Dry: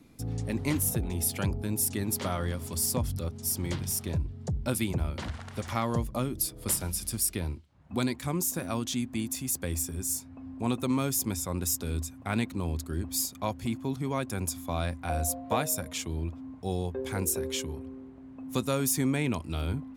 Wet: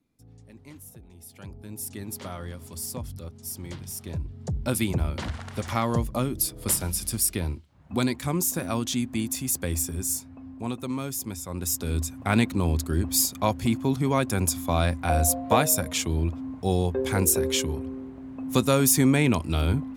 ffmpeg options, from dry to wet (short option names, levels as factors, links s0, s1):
-af "volume=5.31,afade=t=in:st=1.27:d=0.72:silence=0.237137,afade=t=in:st=3.94:d=0.88:silence=0.334965,afade=t=out:st=10:d=0.75:silence=0.446684,afade=t=in:st=11.46:d=0.78:silence=0.298538"